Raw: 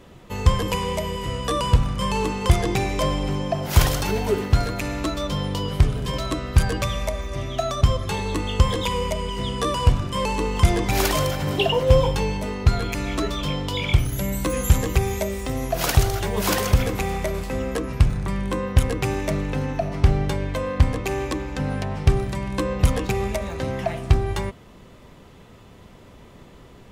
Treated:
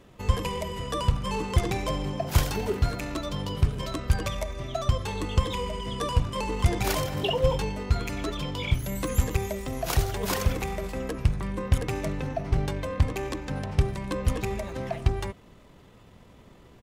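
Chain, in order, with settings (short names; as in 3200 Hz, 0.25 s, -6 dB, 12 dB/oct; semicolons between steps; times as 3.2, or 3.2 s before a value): tempo 1.6×; gain -5.5 dB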